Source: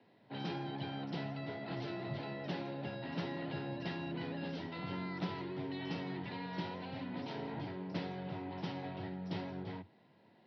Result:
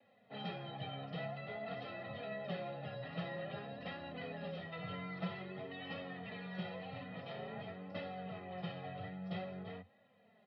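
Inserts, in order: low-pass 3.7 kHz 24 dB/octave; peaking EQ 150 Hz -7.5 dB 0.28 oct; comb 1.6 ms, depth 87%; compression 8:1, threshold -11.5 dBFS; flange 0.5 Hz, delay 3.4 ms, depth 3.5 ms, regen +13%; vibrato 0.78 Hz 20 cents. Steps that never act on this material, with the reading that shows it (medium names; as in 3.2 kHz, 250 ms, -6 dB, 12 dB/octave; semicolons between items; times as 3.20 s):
compression, threshold -11.5 dBFS: peak at its input -25.5 dBFS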